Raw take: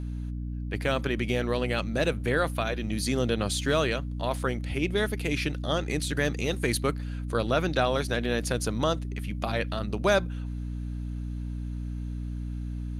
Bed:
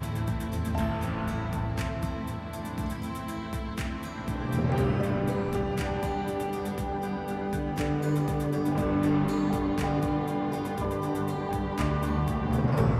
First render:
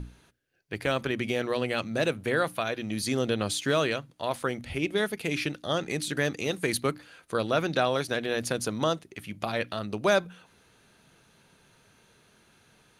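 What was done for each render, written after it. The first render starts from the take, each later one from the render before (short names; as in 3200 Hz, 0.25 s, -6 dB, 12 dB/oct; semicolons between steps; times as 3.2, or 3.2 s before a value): notches 60/120/180/240/300 Hz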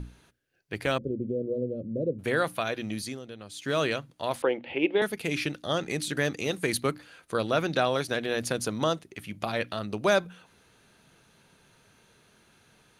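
0.98–2.19 elliptic low-pass 540 Hz; 2.87–3.84 dip -15.5 dB, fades 0.33 s; 4.42–5.02 speaker cabinet 280–3200 Hz, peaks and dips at 330 Hz +7 dB, 510 Hz +9 dB, 870 Hz +9 dB, 1300 Hz -6 dB, 2800 Hz +6 dB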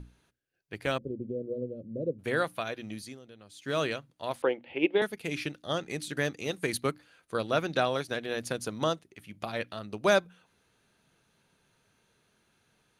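upward expander 1.5:1, over -38 dBFS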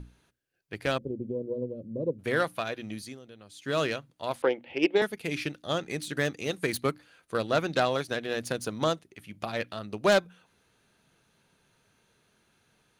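self-modulated delay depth 0.097 ms; in parallel at -12 dB: overloaded stage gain 17 dB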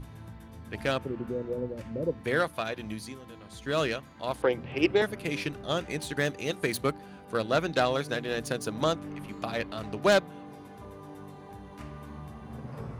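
add bed -15.5 dB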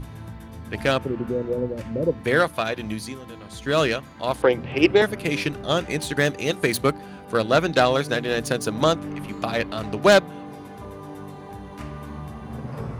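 gain +7.5 dB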